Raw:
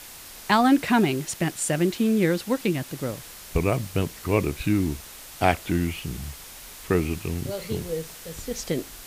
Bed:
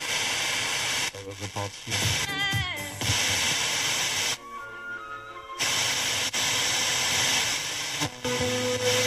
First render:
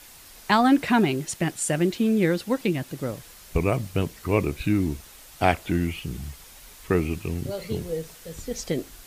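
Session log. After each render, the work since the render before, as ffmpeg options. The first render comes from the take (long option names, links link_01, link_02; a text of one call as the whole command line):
ffmpeg -i in.wav -af "afftdn=noise_reduction=6:noise_floor=-43" out.wav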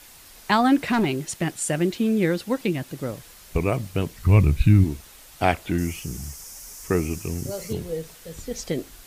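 ffmpeg -i in.wav -filter_complex "[0:a]asettb=1/sr,asplit=3[link_01][link_02][link_03];[link_01]atrim=end=0.774[link_04];[link_02]atrim=start=0.77:end=1.6,asetpts=PTS-STARTPTS,afade=type=in:duration=0.004:curve=qsin,afade=type=out:start_time=0.826:duration=0.004:curve=qsin,asoftclip=type=hard:threshold=-16.5dB[link_05];[link_03]atrim=start=1.596[link_06];[link_04][link_05]acrossfade=duration=0.004:curve1=hsin:curve2=qsin[link_07];[link_07][link_06]acrossfade=duration=0.004:curve1=qsin:curve2=hsin,asplit=3[link_08][link_09][link_10];[link_08]afade=type=out:start_time=4.16:duration=0.02[link_11];[link_09]asubboost=boost=8:cutoff=140,afade=type=in:start_time=4.16:duration=0.02,afade=type=out:start_time=4.83:duration=0.02[link_12];[link_10]afade=type=in:start_time=4.83:duration=0.02[link_13];[link_11][link_12][link_13]amix=inputs=3:normalize=0,asettb=1/sr,asplit=3[link_14][link_15][link_16];[link_14]atrim=end=5.784[link_17];[link_15]atrim=start=5.78:end=7.73,asetpts=PTS-STARTPTS,afade=type=in:duration=0.004:curve=qsin,afade=type=out:start_time=1.946:duration=0.004:curve=qsin,highshelf=frequency=4700:width_type=q:width=3:gain=6.5[link_18];[link_16]atrim=start=7.726[link_19];[link_17][link_18]acrossfade=duration=0.004:curve1=hsin:curve2=qsin[link_20];[link_20][link_19]acrossfade=duration=0.004:curve1=qsin:curve2=hsin" out.wav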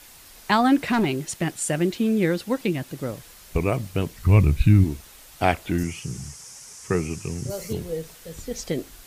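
ffmpeg -i in.wav -filter_complex "[0:a]asettb=1/sr,asplit=3[link_01][link_02][link_03];[link_01]atrim=end=5.834[link_04];[link_02]atrim=start=5.83:end=7.5,asetpts=PTS-STARTPTS,afade=type=in:duration=0.004:curve=qsin,afade=type=out:start_time=1.666:duration=0.004:curve=qsin,highpass=100,equalizer=frequency=120:width_type=q:width=4:gain=8,equalizer=frequency=290:width_type=q:width=4:gain=-6,equalizer=frequency=640:width_type=q:width=4:gain=-4,lowpass=frequency=9800:width=0.5412,lowpass=frequency=9800:width=1.3066[link_05];[link_03]atrim=start=7.496[link_06];[link_04][link_05]acrossfade=duration=0.004:curve1=hsin:curve2=qsin[link_07];[link_07][link_06]acrossfade=duration=0.004:curve1=qsin:curve2=hsin" out.wav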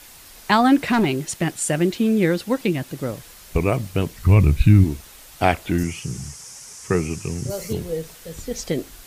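ffmpeg -i in.wav -af "volume=3dB,alimiter=limit=-3dB:level=0:latency=1" out.wav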